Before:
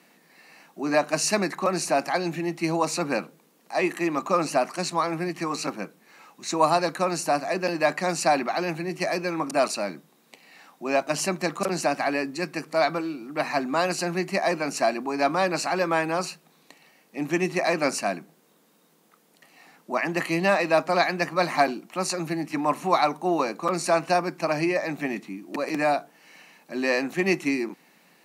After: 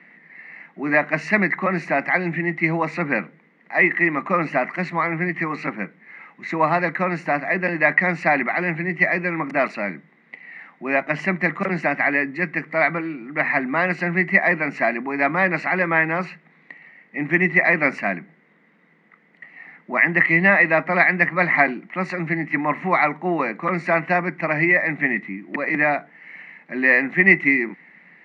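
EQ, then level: resonant low-pass 2 kHz, resonance Q 12; peaking EQ 180 Hz +8 dB 1.2 oct; -1.0 dB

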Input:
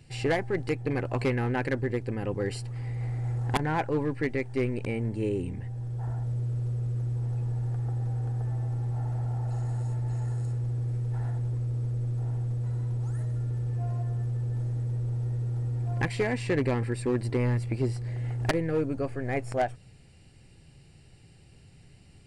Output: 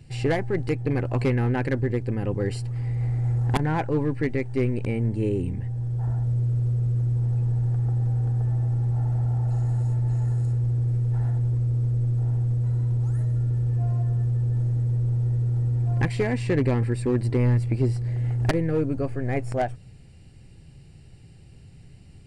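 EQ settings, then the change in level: bass shelf 310 Hz +7.5 dB; 0.0 dB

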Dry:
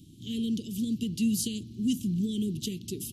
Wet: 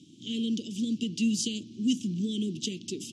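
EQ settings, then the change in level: cabinet simulation 290–6900 Hz, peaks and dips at 410 Hz -5 dB, 1.8 kHz -7 dB, 4.2 kHz -6 dB; +6.0 dB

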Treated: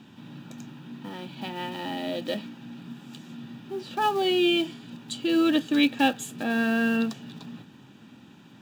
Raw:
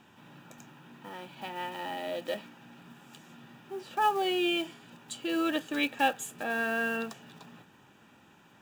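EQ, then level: graphic EQ 125/250/4000 Hz +9/+12/+9 dB; 0.0 dB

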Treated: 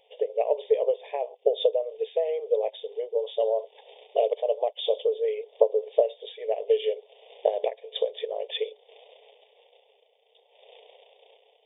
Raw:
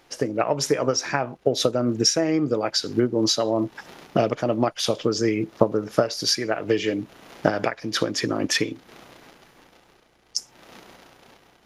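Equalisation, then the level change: dynamic bell 2.5 kHz, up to -6 dB, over -47 dBFS, Q 2.4; brick-wall FIR band-pass 410–3700 Hz; Butterworth band-stop 1.4 kHz, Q 0.51; +3.0 dB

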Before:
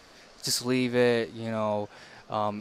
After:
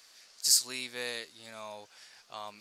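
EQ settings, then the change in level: pre-emphasis filter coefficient 0.97; treble shelf 9.6 kHz -4 dB; dynamic bell 7.2 kHz, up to +4 dB, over -46 dBFS, Q 0.79; +4.0 dB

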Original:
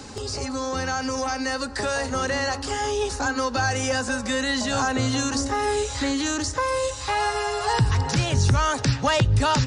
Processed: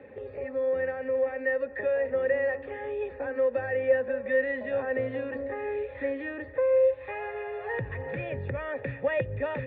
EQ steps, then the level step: cascade formant filter e; high-pass 68 Hz; +5.0 dB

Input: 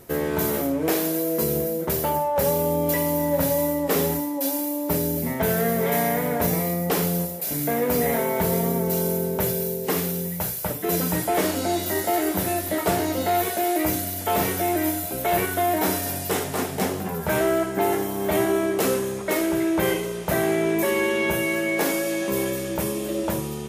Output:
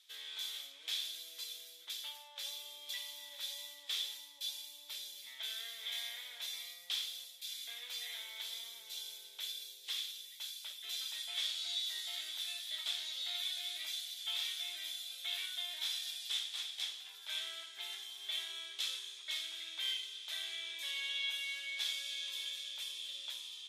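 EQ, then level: ladder band-pass 3.6 kHz, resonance 80%; band-stop 2.9 kHz, Q 13; +2.5 dB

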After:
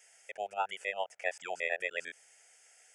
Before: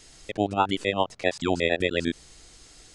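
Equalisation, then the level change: high-pass 730 Hz 12 dB/octave; static phaser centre 1.1 kHz, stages 6; -4.5 dB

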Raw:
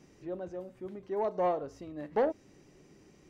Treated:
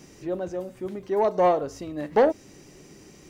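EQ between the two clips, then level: treble shelf 4.4 kHz +9.5 dB; +9.0 dB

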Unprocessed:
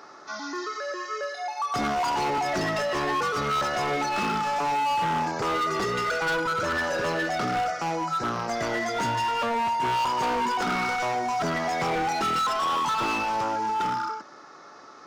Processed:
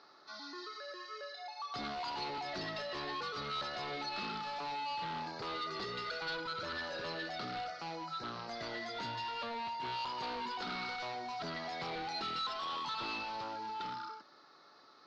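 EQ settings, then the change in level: four-pole ladder low-pass 4.6 kHz, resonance 70%; -3.5 dB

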